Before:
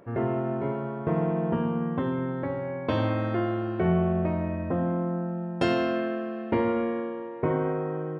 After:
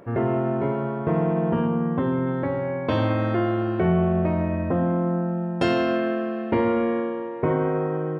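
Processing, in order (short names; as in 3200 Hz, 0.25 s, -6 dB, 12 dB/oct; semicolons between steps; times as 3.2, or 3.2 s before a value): 1.67–2.27 high shelf 3200 Hz -9 dB; in parallel at -1 dB: limiter -22 dBFS, peak gain reduction 10 dB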